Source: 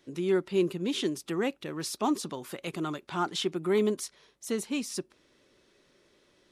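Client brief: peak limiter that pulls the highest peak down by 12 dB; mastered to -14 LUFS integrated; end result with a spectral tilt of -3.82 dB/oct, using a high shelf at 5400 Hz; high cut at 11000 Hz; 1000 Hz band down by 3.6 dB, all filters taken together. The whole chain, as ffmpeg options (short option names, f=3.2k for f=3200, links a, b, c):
-af "lowpass=11k,equalizer=f=1k:t=o:g=-5,highshelf=f=5.4k:g=4.5,volume=23dB,alimiter=limit=-4.5dB:level=0:latency=1"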